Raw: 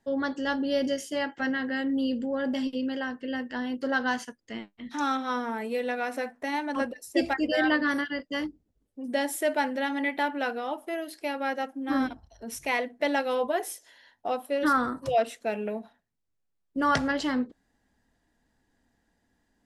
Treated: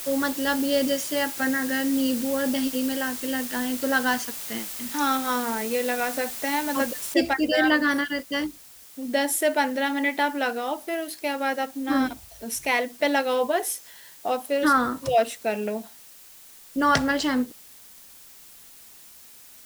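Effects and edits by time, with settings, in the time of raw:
1.45–1.67 spectral delete 2600–6400 Hz
7.14 noise floor step -44 dB -57 dB
whole clip: high shelf 4400 Hz +6.5 dB; gain +3.5 dB

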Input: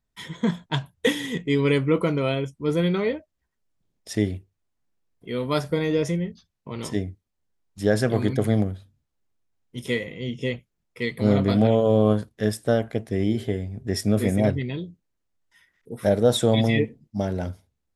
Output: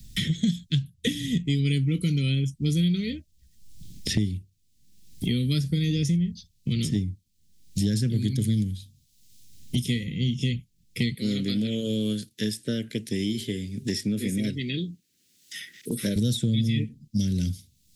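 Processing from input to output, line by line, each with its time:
11.14–16.16 HPF 420 Hz
whole clip: Chebyshev band-stop 180–4000 Hz, order 2; three-band squash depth 100%; gain +4.5 dB

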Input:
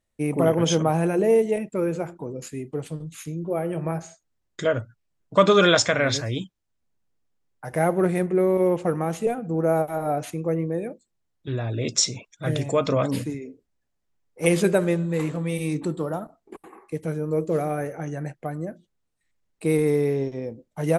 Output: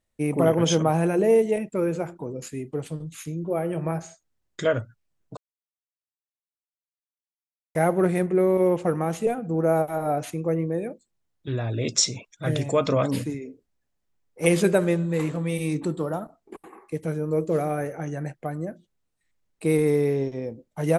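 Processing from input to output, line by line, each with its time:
5.37–7.75 mute

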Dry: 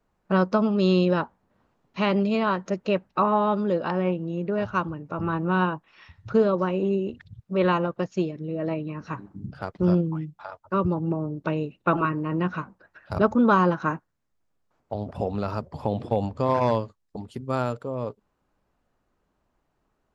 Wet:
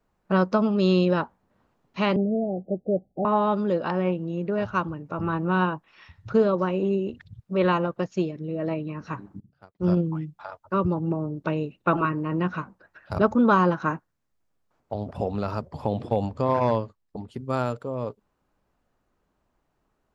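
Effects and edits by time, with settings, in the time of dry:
2.16–3.25 Chebyshev low-pass 790 Hz, order 10
9.4–9.97 upward expander 2.5:1, over -35 dBFS
16.41–17.39 high shelf 4200 Hz -7.5 dB

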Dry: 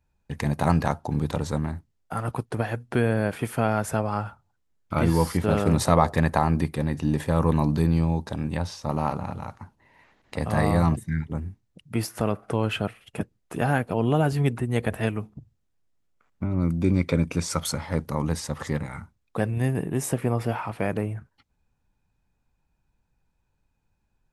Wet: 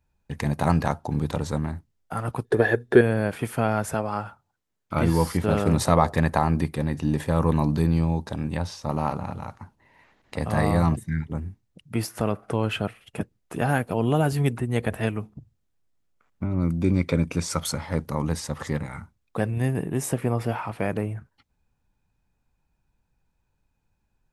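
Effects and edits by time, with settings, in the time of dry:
2.44–3.01 small resonant body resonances 410/1700/3600 Hz, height 17 dB, ringing for 30 ms
3.94–4.94 low shelf 93 Hz -12 dB
13.69–14.57 high shelf 8000 Hz +8.5 dB

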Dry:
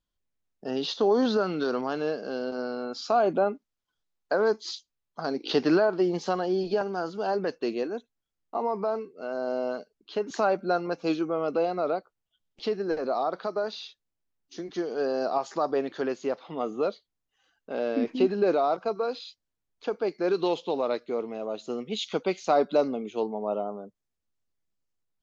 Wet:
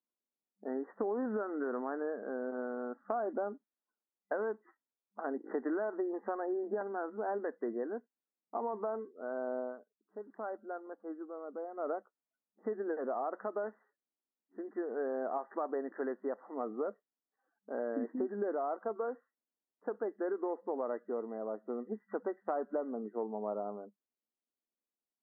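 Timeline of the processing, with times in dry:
9.59–11.9 dip -10.5 dB, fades 0.17 s
whole clip: low-pass opened by the level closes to 1000 Hz, open at -20.5 dBFS; FFT band-pass 200–2000 Hz; compressor, threshold -26 dBFS; gain -5.5 dB

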